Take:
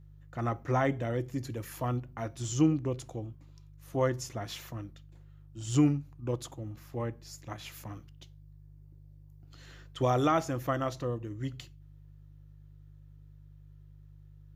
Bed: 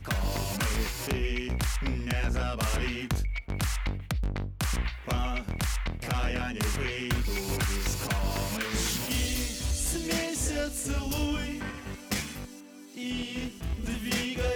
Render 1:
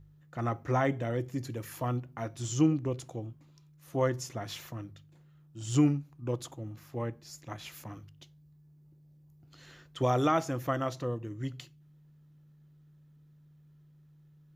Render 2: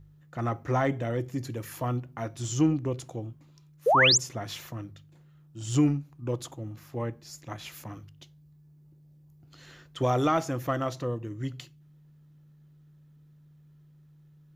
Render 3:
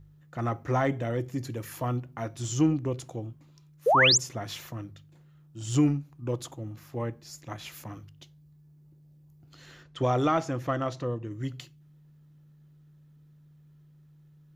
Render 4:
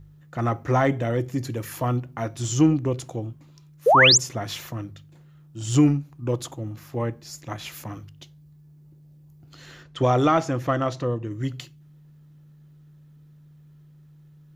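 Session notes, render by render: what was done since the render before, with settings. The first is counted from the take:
de-hum 50 Hz, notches 2
in parallel at -8.5 dB: saturation -26.5 dBFS, distortion -9 dB; 3.86–4.18 s: on the sum: painted sound rise 420–7800 Hz -20 dBFS
9.83–11.31 s: distance through air 53 m
trim +5.5 dB

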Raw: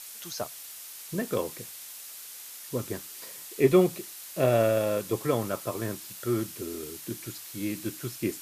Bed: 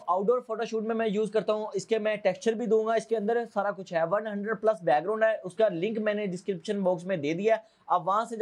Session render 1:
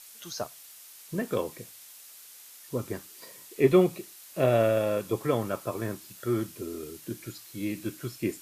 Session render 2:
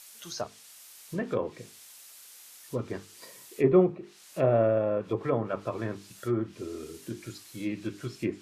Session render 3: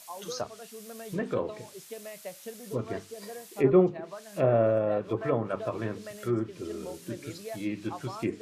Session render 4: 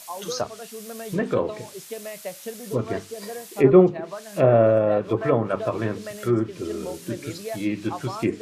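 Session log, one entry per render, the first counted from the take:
noise print and reduce 6 dB
hum notches 50/100/150/200/250/300/350/400/450 Hz; low-pass that closes with the level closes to 1.3 kHz, closed at -23.5 dBFS
add bed -15.5 dB
trim +7 dB

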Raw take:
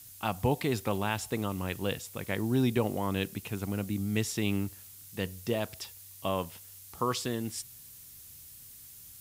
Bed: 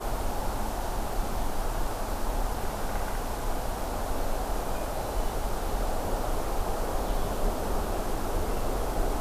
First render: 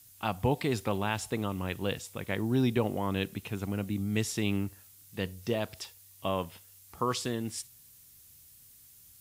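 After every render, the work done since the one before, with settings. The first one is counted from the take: noise print and reduce 6 dB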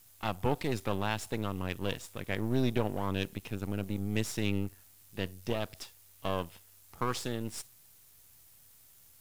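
partial rectifier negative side -12 dB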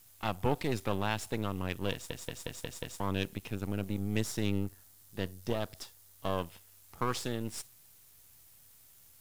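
1.92 s: stutter in place 0.18 s, 6 plays; 4.18–6.38 s: peaking EQ 2.5 kHz -5.5 dB 0.54 oct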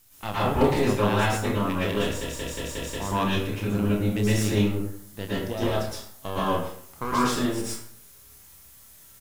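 doubling 29 ms -7 dB; plate-style reverb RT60 0.65 s, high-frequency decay 0.6×, pre-delay 100 ms, DRR -9 dB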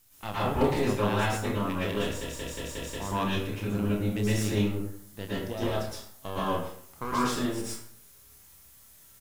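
trim -4 dB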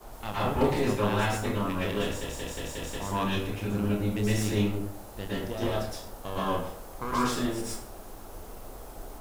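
add bed -14.5 dB

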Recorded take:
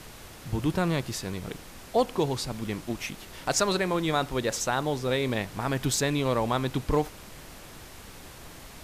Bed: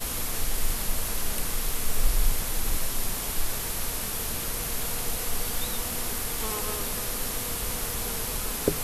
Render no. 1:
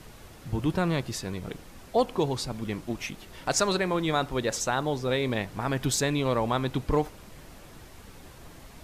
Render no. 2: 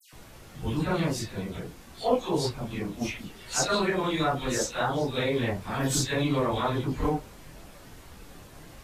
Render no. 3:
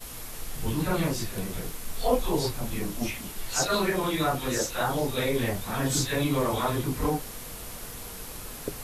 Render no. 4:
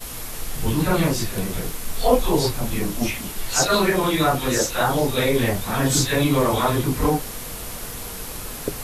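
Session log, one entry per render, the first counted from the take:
noise reduction 6 dB, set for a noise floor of -46 dBFS
phase randomisation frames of 100 ms; phase dispersion lows, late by 130 ms, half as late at 2.4 kHz
add bed -9.5 dB
trim +7 dB

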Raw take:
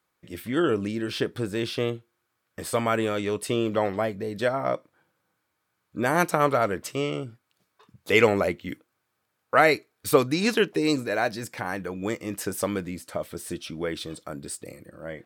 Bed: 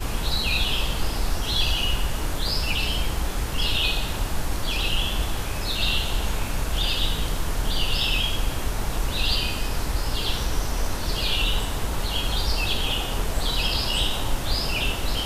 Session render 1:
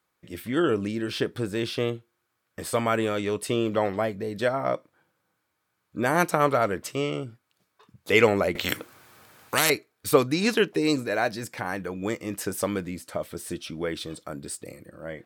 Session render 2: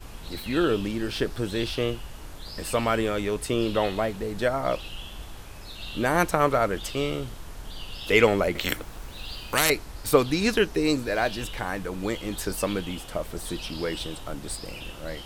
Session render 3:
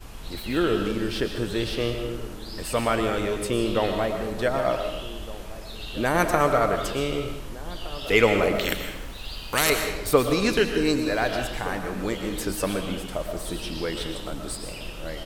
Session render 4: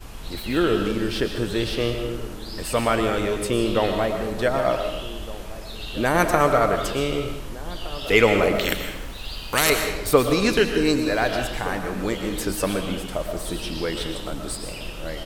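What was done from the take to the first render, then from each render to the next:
8.55–9.70 s: spectrum-flattening compressor 4:1
add bed -14.5 dB
echo from a far wall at 260 m, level -16 dB; algorithmic reverb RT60 0.98 s, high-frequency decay 0.85×, pre-delay 80 ms, DRR 5 dB
trim +2.5 dB; peak limiter -3 dBFS, peak gain reduction 1 dB

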